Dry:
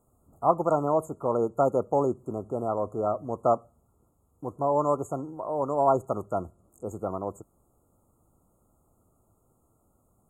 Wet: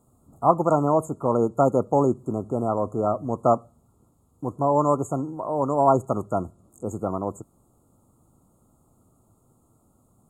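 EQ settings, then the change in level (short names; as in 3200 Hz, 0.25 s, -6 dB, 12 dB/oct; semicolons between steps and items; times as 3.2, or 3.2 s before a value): graphic EQ 125/250/1000/4000/8000 Hz +6/+6/+3/+10/+4 dB; +1.0 dB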